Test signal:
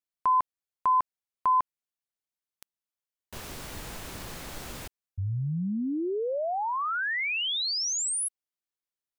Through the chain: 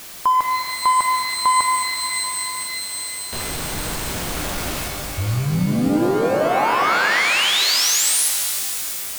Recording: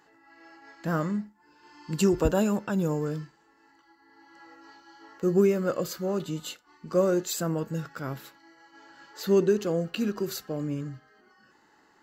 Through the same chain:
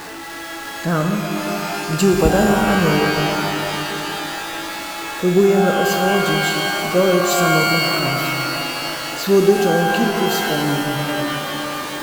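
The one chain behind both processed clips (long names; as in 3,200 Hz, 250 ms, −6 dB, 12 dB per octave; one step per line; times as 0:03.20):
converter with a step at zero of −34.5 dBFS
reverb with rising layers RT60 3.5 s, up +12 semitones, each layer −2 dB, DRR 3 dB
level +6.5 dB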